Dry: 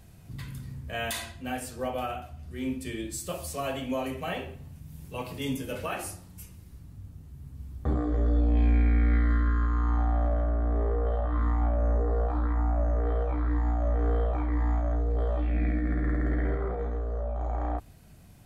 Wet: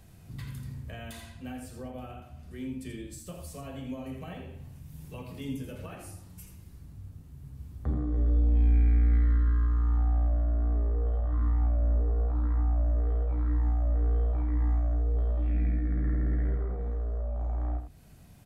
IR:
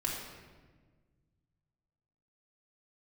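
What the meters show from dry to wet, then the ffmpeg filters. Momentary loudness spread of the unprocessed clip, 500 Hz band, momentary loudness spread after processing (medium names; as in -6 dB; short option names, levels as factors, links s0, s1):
17 LU, -9.0 dB, 20 LU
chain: -filter_complex "[0:a]acrossover=split=280[s0][s1];[s1]acompressor=threshold=0.00562:ratio=4[s2];[s0][s2]amix=inputs=2:normalize=0,asplit=2[s3][s4];[s4]aecho=0:1:83:0.398[s5];[s3][s5]amix=inputs=2:normalize=0,volume=0.841"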